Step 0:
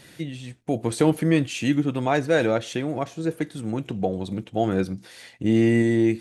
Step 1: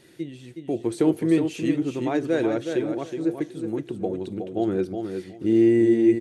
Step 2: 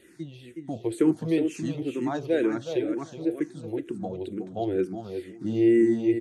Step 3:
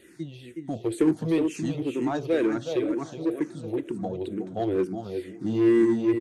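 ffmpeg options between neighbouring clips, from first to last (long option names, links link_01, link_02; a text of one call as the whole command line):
ffmpeg -i in.wav -filter_complex "[0:a]equalizer=frequency=360:width_type=o:width=0.54:gain=13.5,asplit=2[link_01][link_02];[link_02]aecho=0:1:368|736|1104:0.473|0.0899|0.0171[link_03];[link_01][link_03]amix=inputs=2:normalize=0,volume=-8dB" out.wav
ffmpeg -i in.wav -filter_complex "[0:a]asplit=2[link_01][link_02];[link_02]afreqshift=-2.1[link_03];[link_01][link_03]amix=inputs=2:normalize=1" out.wav
ffmpeg -i in.wav -filter_complex "[0:a]asplit=2[link_01][link_02];[link_02]aeval=exprs='0.0562*(abs(mod(val(0)/0.0562+3,4)-2)-1)':channel_layout=same,volume=-12dB[link_03];[link_01][link_03]amix=inputs=2:normalize=0,asplit=2[link_04][link_05];[link_05]adelay=980,lowpass=frequency=3600:poles=1,volume=-22dB,asplit=2[link_06][link_07];[link_07]adelay=980,lowpass=frequency=3600:poles=1,volume=0.46,asplit=2[link_08][link_09];[link_09]adelay=980,lowpass=frequency=3600:poles=1,volume=0.46[link_10];[link_04][link_06][link_08][link_10]amix=inputs=4:normalize=0" out.wav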